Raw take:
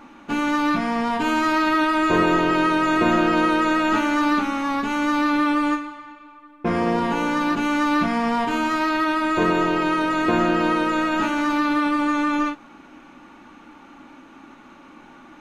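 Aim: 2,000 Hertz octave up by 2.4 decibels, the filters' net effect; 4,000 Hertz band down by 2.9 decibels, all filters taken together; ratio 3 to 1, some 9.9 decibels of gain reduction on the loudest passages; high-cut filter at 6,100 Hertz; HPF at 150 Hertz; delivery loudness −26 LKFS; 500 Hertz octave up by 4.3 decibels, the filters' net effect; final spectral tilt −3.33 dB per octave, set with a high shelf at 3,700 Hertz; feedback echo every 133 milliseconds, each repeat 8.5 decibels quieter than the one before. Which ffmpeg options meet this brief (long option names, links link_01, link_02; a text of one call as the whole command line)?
ffmpeg -i in.wav -af "highpass=150,lowpass=6100,equalizer=frequency=500:width_type=o:gain=6,equalizer=frequency=2000:width_type=o:gain=4.5,highshelf=frequency=3700:gain=-4,equalizer=frequency=4000:width_type=o:gain=-3.5,acompressor=threshold=-26dB:ratio=3,aecho=1:1:133|266|399|532:0.376|0.143|0.0543|0.0206,volume=0.5dB" out.wav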